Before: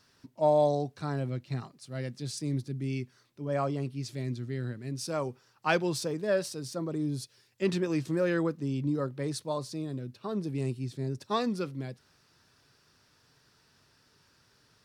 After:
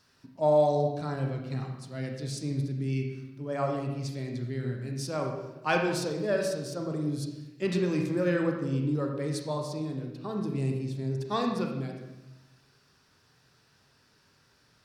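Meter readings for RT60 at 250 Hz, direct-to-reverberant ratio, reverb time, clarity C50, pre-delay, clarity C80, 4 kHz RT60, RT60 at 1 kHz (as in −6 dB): 1.2 s, 1.5 dB, 1.0 s, 4.0 dB, 31 ms, 6.0 dB, 0.85 s, 0.95 s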